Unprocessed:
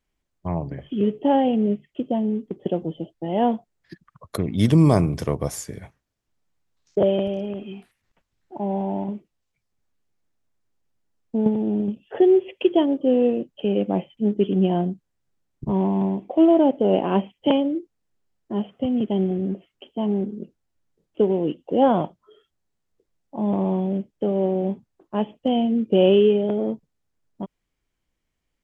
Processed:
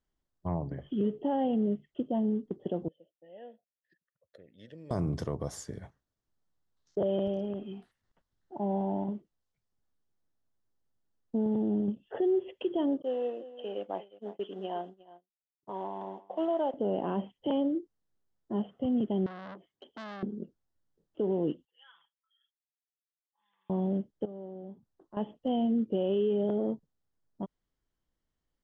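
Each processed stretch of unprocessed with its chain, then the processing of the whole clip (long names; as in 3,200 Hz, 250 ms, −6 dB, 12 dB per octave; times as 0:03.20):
0:02.88–0:04.91: formant filter e + parametric band 470 Hz −11.5 dB 2.8 octaves
0:13.02–0:16.74: high-pass filter 660 Hz + single-tap delay 357 ms −14.5 dB + downward expander −40 dBFS
0:19.26–0:20.23: notch comb filter 1,400 Hz + downward compressor 2 to 1, threshold −28 dBFS + saturating transformer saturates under 2,100 Hz
0:21.65–0:23.70: spectral envelope exaggerated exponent 1.5 + elliptic high-pass filter 1,700 Hz, stop band 60 dB + comb filter 6 ms, depth 79%
0:24.25–0:25.17: parametric band 2,400 Hz −4.5 dB 0.59 octaves + downward compressor 2 to 1, threshold −47 dBFS
whole clip: Bessel low-pass filter 5,800 Hz; parametric band 2,400 Hz −12 dB 0.39 octaves; brickwall limiter −16 dBFS; level −5.5 dB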